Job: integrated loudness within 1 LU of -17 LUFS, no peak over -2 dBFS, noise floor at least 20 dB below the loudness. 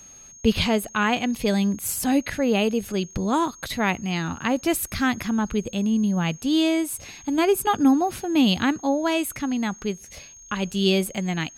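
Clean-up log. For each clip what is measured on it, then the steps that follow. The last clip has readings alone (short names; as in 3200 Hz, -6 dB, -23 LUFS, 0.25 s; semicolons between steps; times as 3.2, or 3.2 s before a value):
ticks 25/s; steady tone 6500 Hz; tone level -44 dBFS; loudness -23.5 LUFS; peak -6.0 dBFS; loudness target -17.0 LUFS
-> de-click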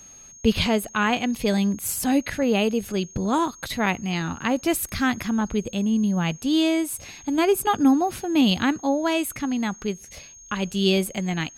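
ticks 0.086/s; steady tone 6500 Hz; tone level -44 dBFS
-> notch 6500 Hz, Q 30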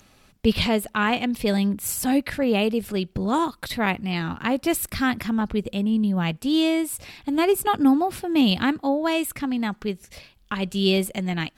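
steady tone none; loudness -23.5 LUFS; peak -6.0 dBFS; loudness target -17.0 LUFS
-> gain +6.5 dB; limiter -2 dBFS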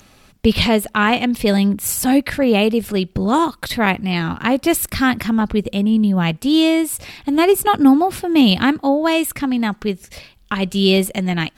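loudness -17.0 LUFS; peak -2.0 dBFS; noise floor -51 dBFS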